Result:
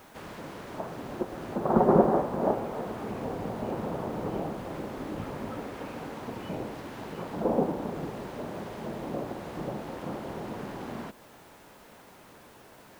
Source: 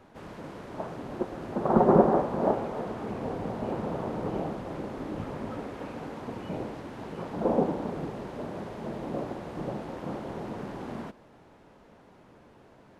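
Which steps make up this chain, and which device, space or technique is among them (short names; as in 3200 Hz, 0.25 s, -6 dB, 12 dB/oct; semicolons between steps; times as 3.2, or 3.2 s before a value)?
noise-reduction cassette on a plain deck (mismatched tape noise reduction encoder only; wow and flutter 17 cents; white noise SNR 30 dB); gain -1 dB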